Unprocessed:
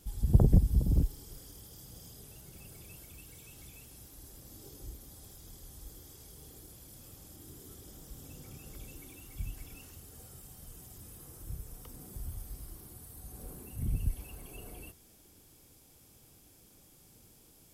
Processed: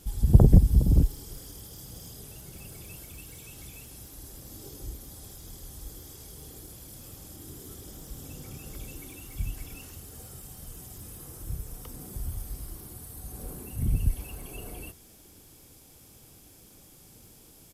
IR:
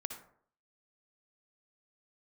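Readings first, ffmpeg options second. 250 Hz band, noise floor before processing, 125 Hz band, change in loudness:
+6.5 dB, -61 dBFS, +6.5 dB, +6.5 dB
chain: -af "aresample=32000,aresample=44100,volume=2.11"

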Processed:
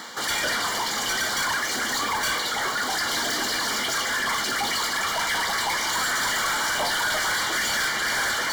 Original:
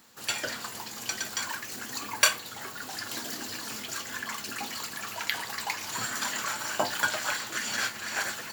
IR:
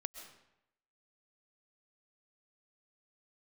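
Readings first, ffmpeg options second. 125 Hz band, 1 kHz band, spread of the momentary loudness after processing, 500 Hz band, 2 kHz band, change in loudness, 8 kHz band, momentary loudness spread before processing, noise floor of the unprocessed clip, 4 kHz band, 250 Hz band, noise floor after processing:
+6.0 dB, +9.5 dB, 2 LU, +7.0 dB, +8.0 dB, +7.5 dB, +5.5 dB, 8 LU, -42 dBFS, +8.5 dB, +7.0 dB, -28 dBFS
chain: -filter_complex "[0:a]highshelf=f=11000:g=-9,areverse,acompressor=mode=upward:threshold=0.0126:ratio=2.5,areverse,asplit=2[s0][s1];[s1]highpass=f=720:p=1,volume=31.6,asoftclip=type=tanh:threshold=0.562[s2];[s0][s2]amix=inputs=2:normalize=0,lowpass=f=3700:p=1,volume=0.501,asoftclip=type=tanh:threshold=0.0708,asuperstop=centerf=2600:order=20:qfactor=6.1"

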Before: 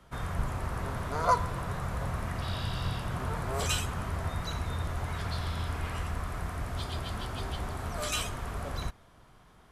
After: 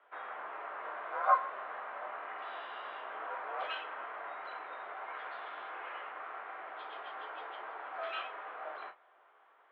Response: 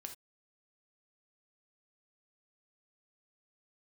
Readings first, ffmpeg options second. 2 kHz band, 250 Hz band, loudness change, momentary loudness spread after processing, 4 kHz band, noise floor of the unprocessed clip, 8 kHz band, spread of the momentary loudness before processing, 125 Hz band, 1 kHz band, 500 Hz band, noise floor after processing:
-2.0 dB, -23.0 dB, -6.0 dB, 8 LU, -12.0 dB, -58 dBFS, under -40 dB, 6 LU, under -40 dB, -1.5 dB, -5.5 dB, -65 dBFS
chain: -filter_complex "[0:a]highpass=f=280:t=q:w=0.5412,highpass=f=280:t=q:w=1.307,lowpass=f=3400:t=q:w=0.5176,lowpass=f=3400:t=q:w=0.7071,lowpass=f=3400:t=q:w=1.932,afreqshift=61,acrossover=split=530 2500:gain=0.141 1 0.158[s0][s1][s2];[s0][s1][s2]amix=inputs=3:normalize=0[s3];[1:a]atrim=start_sample=2205,asetrate=83790,aresample=44100[s4];[s3][s4]afir=irnorm=-1:irlink=0,volume=2.82"

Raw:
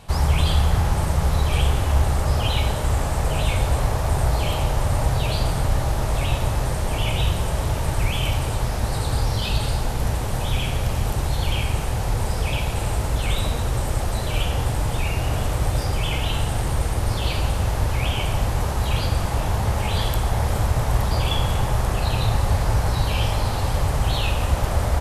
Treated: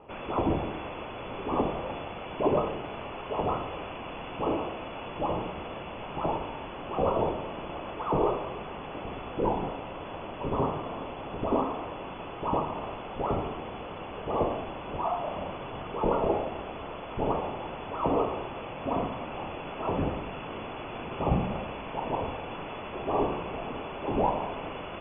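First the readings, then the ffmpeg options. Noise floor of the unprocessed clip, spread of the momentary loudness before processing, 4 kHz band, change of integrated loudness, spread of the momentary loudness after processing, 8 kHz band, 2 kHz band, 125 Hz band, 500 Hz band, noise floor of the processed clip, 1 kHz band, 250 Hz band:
-25 dBFS, 3 LU, -16.5 dB, -9.0 dB, 11 LU, under -40 dB, -11.0 dB, -18.0 dB, -1.0 dB, -40 dBFS, -3.0 dB, -2.5 dB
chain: -af "aexciter=amount=10.9:drive=7.3:freq=2700,aderivative,lowpass=f=3000:t=q:w=0.5098,lowpass=f=3000:t=q:w=0.6013,lowpass=f=3000:t=q:w=0.9,lowpass=f=3000:t=q:w=2.563,afreqshift=-3500"

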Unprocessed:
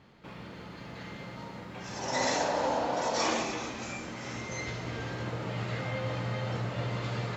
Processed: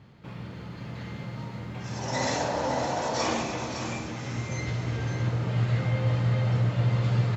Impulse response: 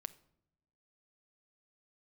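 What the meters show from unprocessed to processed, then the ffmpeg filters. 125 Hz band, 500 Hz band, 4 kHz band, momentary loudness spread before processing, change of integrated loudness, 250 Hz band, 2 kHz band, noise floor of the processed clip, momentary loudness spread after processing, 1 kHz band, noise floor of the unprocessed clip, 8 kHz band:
+11.0 dB, +1.5 dB, +0.5 dB, 15 LU, +4.5 dB, +4.5 dB, +0.5 dB, -41 dBFS, 14 LU, +1.0 dB, -46 dBFS, no reading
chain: -af "equalizer=f=110:w=0.94:g=11.5,aecho=1:1:561:0.398"

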